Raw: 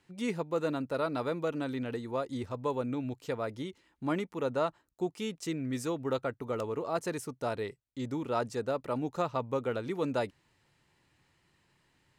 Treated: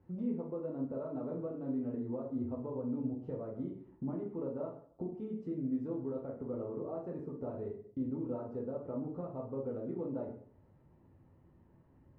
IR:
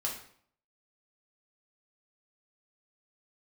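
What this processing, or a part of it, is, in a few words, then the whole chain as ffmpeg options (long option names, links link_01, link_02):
television next door: -filter_complex "[0:a]acompressor=threshold=-46dB:ratio=5,lowpass=490[link_01];[1:a]atrim=start_sample=2205[link_02];[link_01][link_02]afir=irnorm=-1:irlink=0,volume=8dB"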